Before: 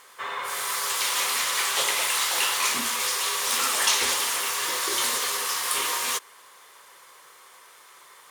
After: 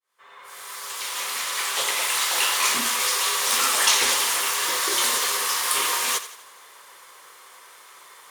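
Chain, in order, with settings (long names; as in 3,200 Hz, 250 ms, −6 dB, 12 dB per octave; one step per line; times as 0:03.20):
fade in at the beginning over 2.72 s
low-shelf EQ 150 Hz −5.5 dB
feedback echo with a high-pass in the loop 85 ms, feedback 46%, level −13 dB
level +3 dB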